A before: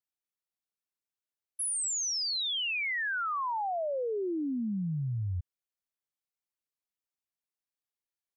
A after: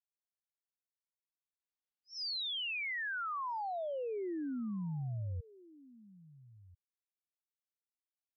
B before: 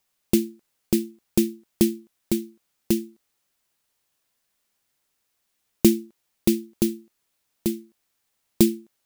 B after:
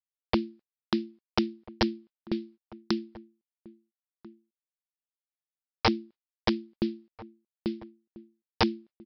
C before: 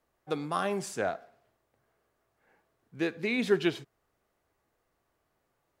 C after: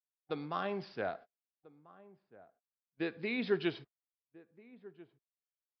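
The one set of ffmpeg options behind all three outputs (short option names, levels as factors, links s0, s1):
-filter_complex "[0:a]agate=range=0.0141:threshold=0.00708:ratio=16:detection=peak,aresample=11025,aeval=exprs='(mod(2.82*val(0)+1,2)-1)/2.82':c=same,aresample=44100,asplit=2[s0][s1];[s1]adelay=1341,volume=0.1,highshelf=f=4000:g=-30.2[s2];[s0][s2]amix=inputs=2:normalize=0,volume=0.501"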